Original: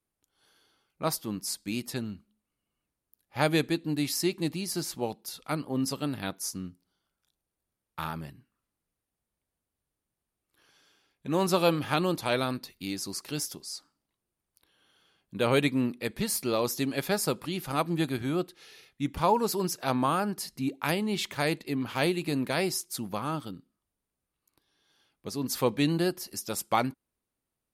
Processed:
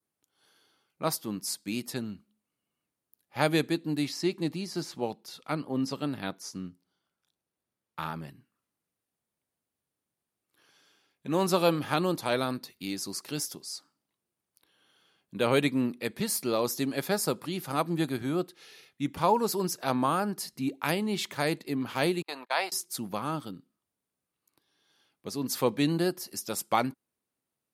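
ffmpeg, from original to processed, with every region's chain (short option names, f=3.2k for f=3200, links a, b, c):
-filter_complex "[0:a]asettb=1/sr,asplit=3[a][b][c];[a]atrim=end=4.054[d];[b]atrim=start=4.05:end=8.28,asetpts=PTS-STARTPTS,afade=t=in:d=0.004:c=qsin,afade=t=out:st=4.226:d=0.004:c=qsin,acrossover=split=6500[e][f];[f]acompressor=threshold=-46dB:ratio=4:attack=1:release=60[g];[e][g]amix=inputs=2:normalize=0,highshelf=f=7k:g=-6[h];[c]atrim=start=8.276[i];[d][h]acrossfade=d=0.004:c1=hsin:c2=qsin[j];[j][i]acrossfade=d=0.004:c1=qsin:c2=hsin,asettb=1/sr,asplit=3[k][l][m];[k]atrim=end=22.224[n];[l]atrim=start=22.22:end=22.72,asetpts=PTS-STARTPTS,afade=t=in:d=0.004:c=qsin,afade=t=out:st=0.496:d=0.004:c=qsin,agate=range=-36dB:threshold=-31dB:ratio=16:release=100:detection=peak,highpass=f=850:t=q:w=2.3,highshelf=f=5.2k:t=q:w=1.5:g=-7[o];[m]atrim=start=22.716[p];[n][o]acrossfade=d=0.004:c1=hsin:c2=qsin[q];[q][p]acrossfade=d=0.004:c1=qsin:c2=hsin,highpass=120,adynamicequalizer=threshold=0.00398:dfrequency=2700:dqfactor=1.7:tfrequency=2700:tqfactor=1.7:attack=5:release=100:ratio=0.375:range=2:mode=cutabove:tftype=bell"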